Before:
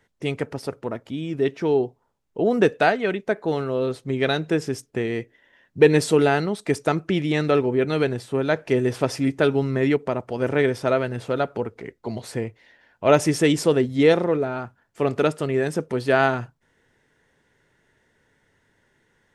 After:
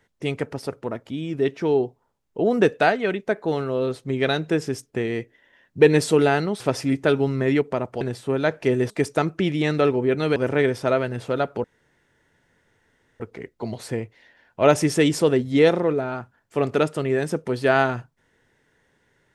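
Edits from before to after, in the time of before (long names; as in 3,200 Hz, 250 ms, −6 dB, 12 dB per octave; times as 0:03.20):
0:06.60–0:08.06: swap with 0:08.95–0:10.36
0:11.64: splice in room tone 1.56 s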